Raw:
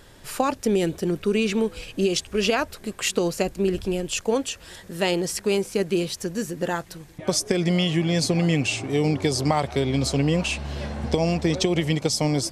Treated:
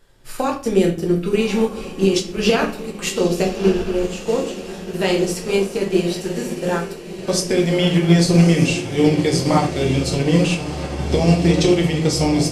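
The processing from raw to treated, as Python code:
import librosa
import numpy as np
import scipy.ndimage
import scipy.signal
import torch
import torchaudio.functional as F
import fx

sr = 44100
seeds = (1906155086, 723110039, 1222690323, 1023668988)

y = fx.high_shelf(x, sr, hz=3000.0, db=-10.5, at=(3.65, 4.65))
y = fx.echo_diffused(y, sr, ms=1235, feedback_pct=64, wet_db=-9.5)
y = fx.room_shoebox(y, sr, seeds[0], volume_m3=66.0, walls='mixed', distance_m=0.79)
y = fx.upward_expand(y, sr, threshold_db=-41.0, expansion=1.5)
y = y * librosa.db_to_amplitude(3.0)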